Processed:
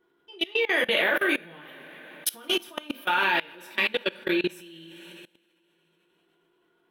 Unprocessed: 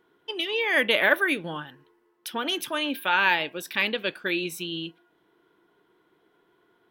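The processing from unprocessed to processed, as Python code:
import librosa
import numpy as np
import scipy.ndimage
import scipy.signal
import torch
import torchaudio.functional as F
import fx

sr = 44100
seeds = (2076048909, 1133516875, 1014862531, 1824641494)

y = fx.tilt_eq(x, sr, slope=3.5, at=(1.65, 2.3))
y = fx.rev_double_slope(y, sr, seeds[0], early_s=0.33, late_s=3.4, knee_db=-18, drr_db=-1.0)
y = fx.level_steps(y, sr, step_db=23)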